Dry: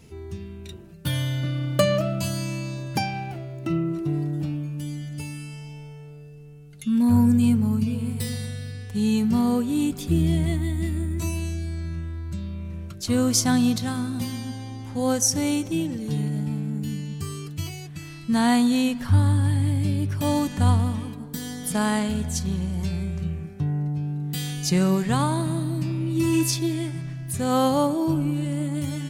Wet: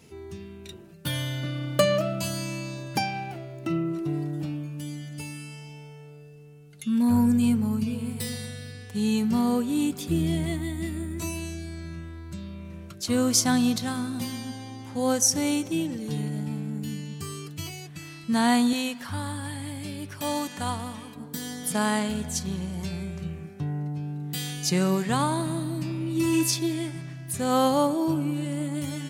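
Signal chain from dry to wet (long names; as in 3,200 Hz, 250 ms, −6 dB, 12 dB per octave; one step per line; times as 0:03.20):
high-pass filter 210 Hz 6 dB per octave, from 0:18.73 670 Hz, from 0:21.16 220 Hz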